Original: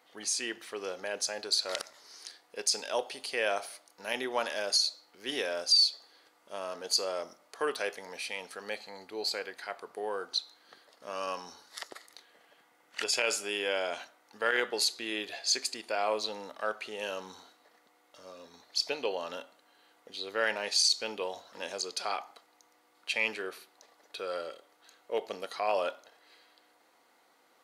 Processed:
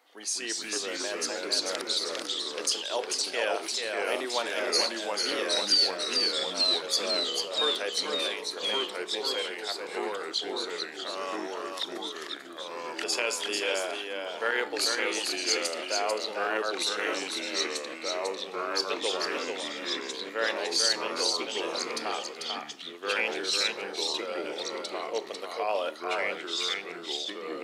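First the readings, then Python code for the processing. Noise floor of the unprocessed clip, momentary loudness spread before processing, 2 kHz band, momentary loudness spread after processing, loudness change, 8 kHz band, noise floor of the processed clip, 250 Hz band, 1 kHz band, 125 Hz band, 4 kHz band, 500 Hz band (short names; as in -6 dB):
-67 dBFS, 17 LU, +4.0 dB, 9 LU, +3.0 dB, +3.0 dB, -42 dBFS, +7.5 dB, +4.0 dB, n/a, +5.0 dB, +4.0 dB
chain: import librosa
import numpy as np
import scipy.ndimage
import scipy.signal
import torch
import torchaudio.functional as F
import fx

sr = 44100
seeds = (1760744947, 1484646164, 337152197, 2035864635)

p1 = scipy.signal.sosfilt(scipy.signal.butter(4, 240.0, 'highpass', fs=sr, output='sos'), x)
p2 = p1 + fx.echo_single(p1, sr, ms=443, db=-4.5, dry=0)
y = fx.echo_pitch(p2, sr, ms=187, semitones=-2, count=3, db_per_echo=-3.0)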